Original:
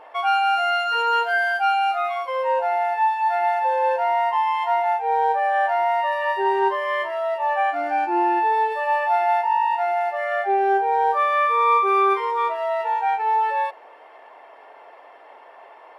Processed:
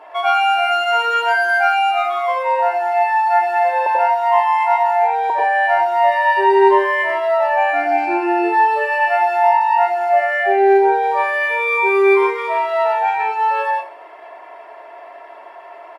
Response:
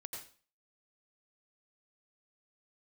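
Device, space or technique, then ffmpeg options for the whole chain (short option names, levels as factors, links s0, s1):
microphone above a desk: -filter_complex "[0:a]asettb=1/sr,asplit=3[s0][s1][s2];[s0]atrim=end=3.864[s3];[s1]atrim=start=3.86:end=5.3,asetpts=PTS-STARTPTS,afade=t=in:d=0.004:c=qsin,afade=t=out:st=1.436:d=0.004:c=qsin,highpass=f=490:w=0.5412,highpass=f=490:w=1.3066[s4];[s2]atrim=start=5.296[s5];[s3][s4]acrossfade=d=0.004:c1=hsin:c2=qsin[s6];[s6][s5]acrossfade=d=0.004:c1=qsin:c2=hsin,aecho=1:1:3:0.65[s7];[1:a]atrim=start_sample=2205[s8];[s7][s8]afir=irnorm=-1:irlink=0,highpass=270,volume=2.66"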